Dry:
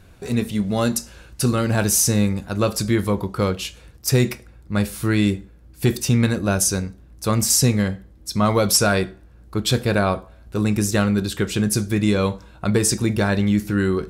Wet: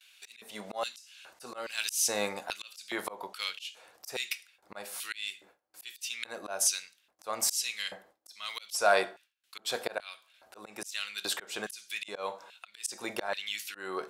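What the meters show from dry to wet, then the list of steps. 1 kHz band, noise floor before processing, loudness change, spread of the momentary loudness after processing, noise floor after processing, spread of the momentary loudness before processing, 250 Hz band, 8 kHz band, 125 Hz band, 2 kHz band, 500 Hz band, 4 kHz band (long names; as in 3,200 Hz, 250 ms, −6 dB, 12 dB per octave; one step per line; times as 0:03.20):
−9.0 dB, −48 dBFS, −13.0 dB, 20 LU, −72 dBFS, 11 LU, −28.0 dB, −11.0 dB, below −35 dB, −8.0 dB, −13.5 dB, −8.0 dB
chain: auto-filter high-pass square 1.2 Hz 710–2,900 Hz
noise gate with hold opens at −49 dBFS
volume swells 363 ms
level −1.5 dB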